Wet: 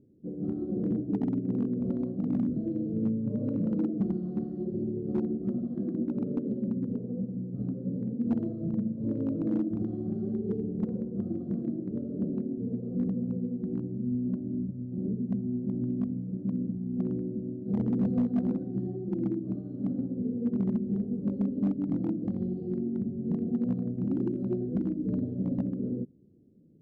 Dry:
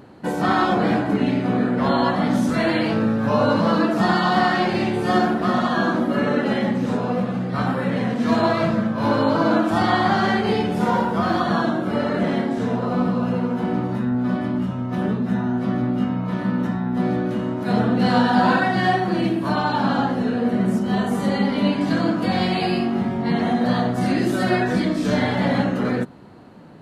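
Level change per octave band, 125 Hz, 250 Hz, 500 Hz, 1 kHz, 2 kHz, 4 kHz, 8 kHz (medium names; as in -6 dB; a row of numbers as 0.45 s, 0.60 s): -8.5 dB, -8.5 dB, -14.5 dB, under -30 dB, under -35 dB, under -40 dB, no reading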